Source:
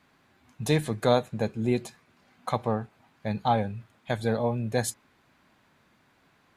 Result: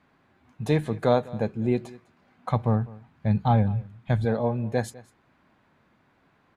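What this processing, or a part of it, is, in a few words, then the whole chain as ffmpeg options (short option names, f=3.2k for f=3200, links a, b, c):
through cloth: -filter_complex "[0:a]asplit=3[a][b][c];[a]afade=t=out:st=2.49:d=0.02[d];[b]asubboost=boost=4:cutoff=210,afade=t=in:st=2.49:d=0.02,afade=t=out:st=4.24:d=0.02[e];[c]afade=t=in:st=4.24:d=0.02[f];[d][e][f]amix=inputs=3:normalize=0,highshelf=f=3.5k:g=-14,aecho=1:1:202:0.0891,volume=1.5dB"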